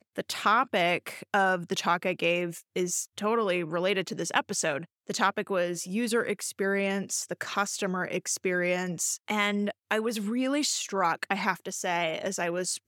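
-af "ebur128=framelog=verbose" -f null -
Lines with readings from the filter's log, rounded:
Integrated loudness:
  I:         -28.5 LUFS
  Threshold: -38.5 LUFS
Loudness range:
  LRA:         1.8 LU
  Threshold: -48.7 LUFS
  LRA low:   -29.4 LUFS
  LRA high:  -27.5 LUFS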